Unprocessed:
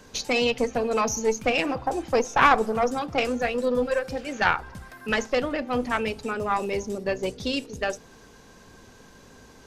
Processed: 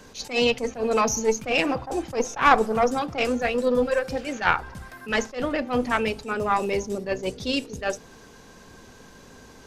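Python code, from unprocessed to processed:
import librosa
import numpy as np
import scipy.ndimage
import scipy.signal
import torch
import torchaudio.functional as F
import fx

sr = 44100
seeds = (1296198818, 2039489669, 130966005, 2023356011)

y = fx.hum_notches(x, sr, base_hz=50, count=2)
y = fx.attack_slew(y, sr, db_per_s=200.0)
y = y * librosa.db_to_amplitude(2.5)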